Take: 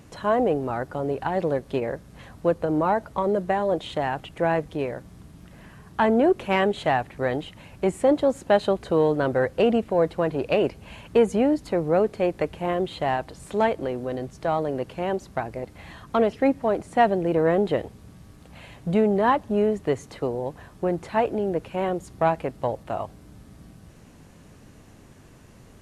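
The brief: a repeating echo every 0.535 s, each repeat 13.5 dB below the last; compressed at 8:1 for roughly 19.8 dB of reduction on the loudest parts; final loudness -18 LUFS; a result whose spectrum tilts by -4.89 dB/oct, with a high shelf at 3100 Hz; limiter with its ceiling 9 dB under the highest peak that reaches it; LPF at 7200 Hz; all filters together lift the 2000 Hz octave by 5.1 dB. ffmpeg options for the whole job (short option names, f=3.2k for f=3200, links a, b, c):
-af "lowpass=7.2k,equalizer=f=2k:t=o:g=7.5,highshelf=f=3.1k:g=-4,acompressor=threshold=-35dB:ratio=8,alimiter=level_in=5.5dB:limit=-24dB:level=0:latency=1,volume=-5.5dB,aecho=1:1:535|1070:0.211|0.0444,volume=23dB"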